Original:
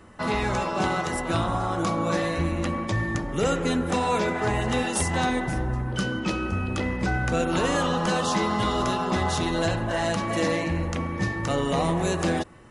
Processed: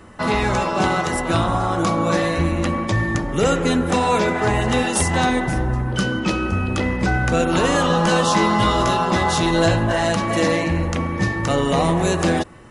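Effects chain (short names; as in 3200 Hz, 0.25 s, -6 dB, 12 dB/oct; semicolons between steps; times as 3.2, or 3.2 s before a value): 7.88–9.93 doubler 18 ms -7 dB; gain +6 dB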